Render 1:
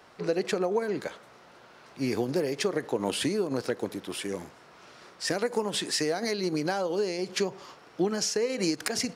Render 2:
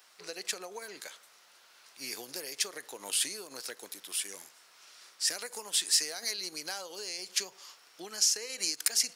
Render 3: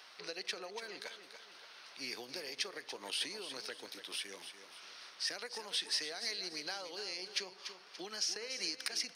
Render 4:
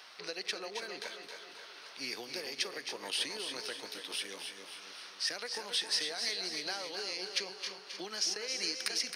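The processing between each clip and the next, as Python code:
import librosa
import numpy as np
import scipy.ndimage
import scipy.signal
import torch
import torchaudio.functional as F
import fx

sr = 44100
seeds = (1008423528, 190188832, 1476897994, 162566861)

y1 = np.diff(x, prepend=0.0)
y1 = y1 * 10.0 ** (6.0 / 20.0)
y2 = scipy.signal.savgol_filter(y1, 15, 4, mode='constant')
y2 = fx.echo_feedback(y2, sr, ms=288, feedback_pct=31, wet_db=-12)
y2 = fx.band_squash(y2, sr, depth_pct=40)
y2 = y2 * 10.0 ** (-2.5 / 20.0)
y3 = fx.echo_feedback(y2, sr, ms=267, feedback_pct=54, wet_db=-8.5)
y3 = y3 * 10.0 ** (3.0 / 20.0)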